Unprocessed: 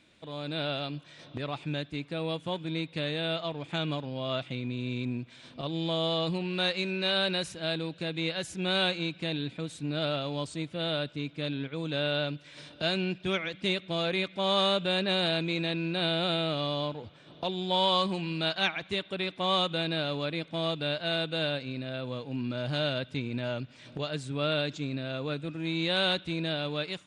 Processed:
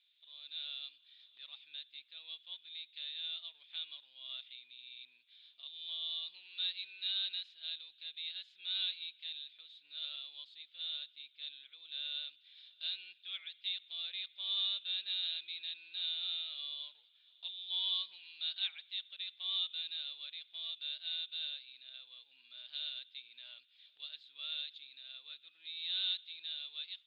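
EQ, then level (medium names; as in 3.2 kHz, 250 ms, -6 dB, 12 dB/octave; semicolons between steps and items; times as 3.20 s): ladder band-pass 3.9 kHz, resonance 70%; distance through air 300 m; peaking EQ 5.8 kHz -9 dB 0.22 oct; +4.0 dB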